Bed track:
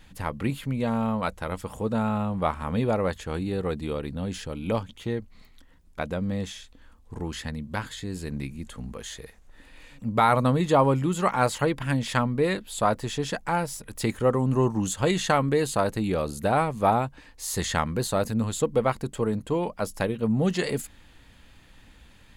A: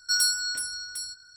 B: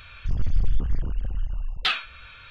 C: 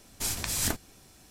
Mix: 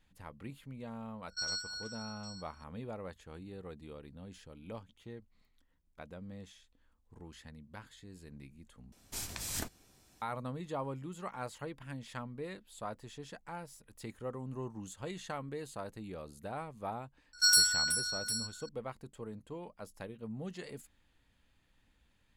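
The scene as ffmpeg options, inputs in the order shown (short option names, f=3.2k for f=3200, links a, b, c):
-filter_complex "[1:a]asplit=2[a][b];[0:a]volume=-18.5dB[c];[a]aresample=16000,aresample=44100[d];[3:a]equalizer=f=11k:w=5.1:g=-3.5[e];[c]asplit=2[f][g];[f]atrim=end=8.924[h];[e]atrim=end=1.3,asetpts=PTS-STARTPTS,volume=-9dB[i];[g]atrim=start=10.216[j];[d]atrim=end=1.36,asetpts=PTS-STARTPTS,volume=-12.5dB,afade=t=in:d=0.004:c=hsin,afade=t=out:st=1.356:d=0.004:c=hsin,adelay=1280[k];[b]atrim=end=1.36,asetpts=PTS-STARTPTS,volume=-1dB,afade=t=in:d=0.004:c=hsin,afade=t=out:st=1.356:d=0.004:c=hsin,adelay=17330[l];[h][i]acrossfade=d=0.004:c1=hsin:c2=hsin[m];[m][j]acrossfade=d=0.004:c1=hsin:c2=hsin[n];[n][k][l]amix=inputs=3:normalize=0"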